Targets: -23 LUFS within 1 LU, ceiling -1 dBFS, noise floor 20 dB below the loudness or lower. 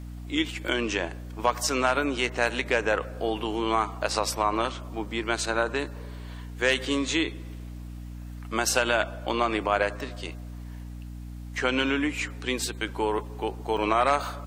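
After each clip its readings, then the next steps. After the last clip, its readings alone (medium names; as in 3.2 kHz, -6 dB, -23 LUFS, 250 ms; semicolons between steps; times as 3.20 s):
dropouts 2; longest dropout 3.3 ms; hum 60 Hz; highest harmonic 300 Hz; hum level -36 dBFS; loudness -27.0 LUFS; peak level -6.5 dBFS; loudness target -23.0 LUFS
-> interpolate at 0.68/13.77 s, 3.3 ms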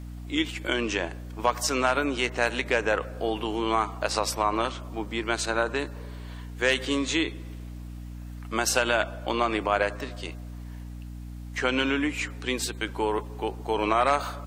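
dropouts 0; hum 60 Hz; highest harmonic 300 Hz; hum level -36 dBFS
-> hum notches 60/120/180/240/300 Hz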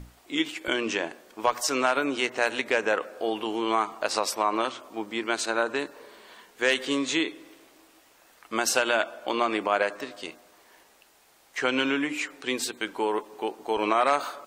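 hum not found; loudness -27.0 LUFS; peak level -6.5 dBFS; loudness target -23.0 LUFS
-> trim +4 dB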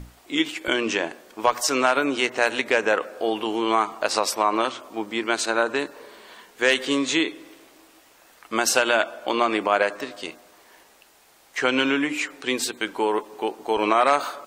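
loudness -23.0 LUFS; peak level -2.5 dBFS; noise floor -55 dBFS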